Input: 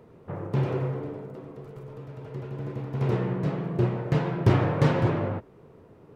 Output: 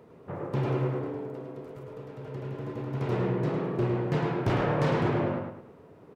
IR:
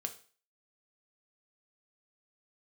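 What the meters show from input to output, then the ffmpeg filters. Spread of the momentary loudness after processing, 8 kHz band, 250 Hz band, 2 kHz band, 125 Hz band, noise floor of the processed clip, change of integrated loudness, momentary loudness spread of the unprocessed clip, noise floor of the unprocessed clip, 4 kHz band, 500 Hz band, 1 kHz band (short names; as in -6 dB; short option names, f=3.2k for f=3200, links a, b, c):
16 LU, n/a, -1.5 dB, 0.0 dB, -4.5 dB, -53 dBFS, -2.5 dB, 19 LU, -53 dBFS, -1.0 dB, 0.0 dB, 0.0 dB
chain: -filter_complex "[0:a]lowshelf=f=96:g=-10,asoftclip=type=tanh:threshold=-19.5dB,asplit=2[a][b];[b]adelay=106,lowpass=f=4.1k:p=1,volume=-4dB,asplit=2[c][d];[d]adelay=106,lowpass=f=4.1k:p=1,volume=0.36,asplit=2[e][f];[f]adelay=106,lowpass=f=4.1k:p=1,volume=0.36,asplit=2[g][h];[h]adelay=106,lowpass=f=4.1k:p=1,volume=0.36,asplit=2[i][j];[j]adelay=106,lowpass=f=4.1k:p=1,volume=0.36[k];[c][e][g][i][k]amix=inputs=5:normalize=0[l];[a][l]amix=inputs=2:normalize=0"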